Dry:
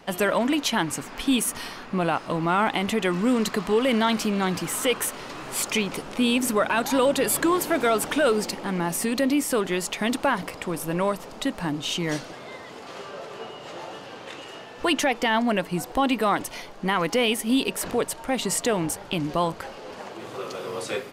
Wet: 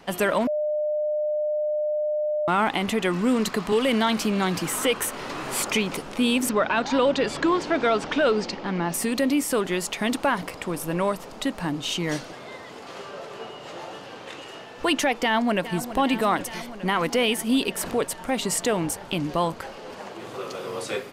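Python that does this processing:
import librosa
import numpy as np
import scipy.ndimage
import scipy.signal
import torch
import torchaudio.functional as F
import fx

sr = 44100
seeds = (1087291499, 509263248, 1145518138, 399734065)

y = fx.band_squash(x, sr, depth_pct=40, at=(3.72, 5.97))
y = fx.lowpass(y, sr, hz=5700.0, slope=24, at=(6.49, 8.94))
y = fx.echo_throw(y, sr, start_s=15.23, length_s=0.69, ms=410, feedback_pct=80, wet_db=-13.0)
y = fx.edit(y, sr, fx.bleep(start_s=0.47, length_s=2.01, hz=603.0, db=-22.0), tone=tone)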